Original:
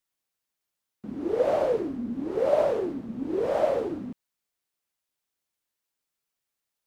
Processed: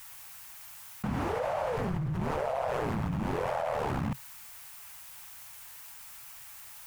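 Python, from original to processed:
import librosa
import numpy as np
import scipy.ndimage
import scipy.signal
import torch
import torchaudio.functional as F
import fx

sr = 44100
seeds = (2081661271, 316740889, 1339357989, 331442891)

y = fx.high_shelf(x, sr, hz=6100.0, db=10.5)
y = fx.ring_mod(y, sr, carrier_hz=fx.line((1.77, 98.0), (4.1, 32.0)), at=(1.77, 4.1), fade=0.02)
y = fx.curve_eq(y, sr, hz=(130.0, 320.0, 860.0, 2600.0, 3800.0), db=(0, -23, 1, -2, -8))
y = fx.env_flatten(y, sr, amount_pct=100)
y = y * librosa.db_to_amplitude(-3.5)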